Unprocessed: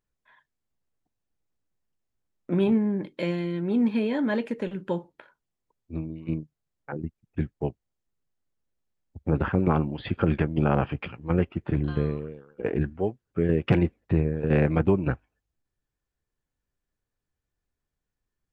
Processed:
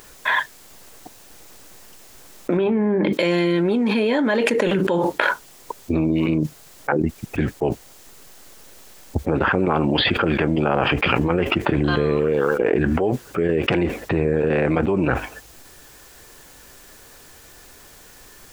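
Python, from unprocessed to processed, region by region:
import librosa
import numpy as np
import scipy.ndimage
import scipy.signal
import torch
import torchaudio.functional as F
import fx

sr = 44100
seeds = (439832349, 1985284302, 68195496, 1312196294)

y = fx.chain(x, sr, fx.lowpass(hz=2500.0, slope=12),
    fx.hum_notches(base_hz=50, count=4), at=(2.57, 3.13))
y = fx.bass_treble(y, sr, bass_db=-12, treble_db=4)
y = fx.env_flatten(y, sr, amount_pct=100)
y = F.gain(torch.from_numpy(y), 2.5).numpy()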